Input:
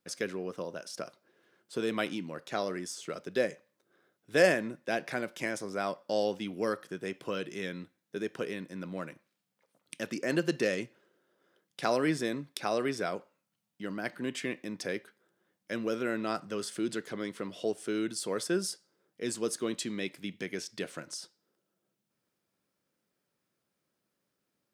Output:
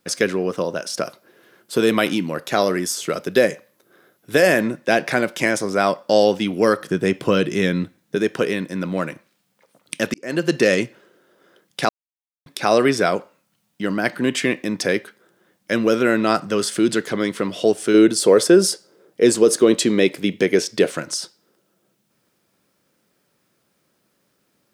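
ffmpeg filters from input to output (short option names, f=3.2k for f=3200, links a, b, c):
-filter_complex "[0:a]asettb=1/sr,asplit=3[a][b][c];[a]atrim=end=1.034[d];[b]atrim=start=1.03:end=4.61,asetpts=PTS-STARTPTS,afade=t=in:d=0.004:c=qsin,afade=t=out:st=3.576:d=0.004:c=qsin,equalizer=f=12k:t=o:w=0.32:g=11[e];[c]atrim=start=4.606[f];[d][e]acrossfade=d=0.004:c1=hsin:c2=qsin[g];[g][f]acrossfade=d=0.004:c1=qsin:c2=hsin,asettb=1/sr,asplit=3[h][i][j];[h]atrim=end=6.804[k];[i]atrim=start=6.8:end=8.16,asetpts=PTS-STARTPTS,afade=t=in:d=0.004:c=qsin,afade=t=out:st=1.356:d=0.004:c=qsin,lowshelf=f=260:g=8.5[l];[j]atrim=start=8.156[m];[k][l]acrossfade=d=0.004:c1=hsin:c2=qsin[n];[n][m]acrossfade=d=0.004:c1=qsin:c2=hsin,asettb=1/sr,asplit=3[o][p][q];[o]atrim=end=17.944[r];[p]atrim=start=17.94:end=20.91,asetpts=PTS-STARTPTS,afade=t=in:d=0.004:c=qsin,afade=t=out:st=2.966:d=0.004:c=qsin,equalizer=f=450:t=o:w=1.2:g=8.5[s];[q]atrim=start=20.906[t];[r][s]acrossfade=d=0.004:c1=hsin:c2=qsin[u];[u][t]acrossfade=d=0.004:c1=qsin:c2=hsin,asplit=4[v][w][x][y];[v]atrim=end=10.14,asetpts=PTS-STARTPTS,afade=t=out:st=10.136:d=0.004:c=hsin[z];[w]atrim=start=10.14:end=11.89,asetpts=PTS-STARTPTS,afade=t=in:d=0.58,afade=t=out:st=1.746:d=0.004:c=hsin[aa];[x]atrim=start=11.89:end=12.46,asetpts=PTS-STARTPTS,volume=0[ab];[y]atrim=start=12.46,asetpts=PTS-STARTPTS,afade=t=in:d=0.004:c=hsin[ac];[z][aa][ab][ac]concat=n=4:v=0:a=1,alimiter=level_in=17.5dB:limit=-1dB:release=50:level=0:latency=1,volume=-2.5dB"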